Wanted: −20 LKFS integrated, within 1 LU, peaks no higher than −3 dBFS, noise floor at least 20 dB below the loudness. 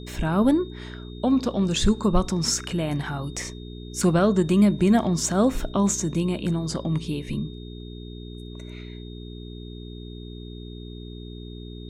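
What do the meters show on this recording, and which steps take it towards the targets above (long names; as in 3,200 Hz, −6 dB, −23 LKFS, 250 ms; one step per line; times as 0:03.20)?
mains hum 60 Hz; hum harmonics up to 420 Hz; level of the hum −36 dBFS; interfering tone 3,700 Hz; level of the tone −48 dBFS; integrated loudness −23.5 LKFS; sample peak −8.0 dBFS; target loudness −20.0 LKFS
→ hum removal 60 Hz, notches 7
notch filter 3,700 Hz, Q 30
level +3.5 dB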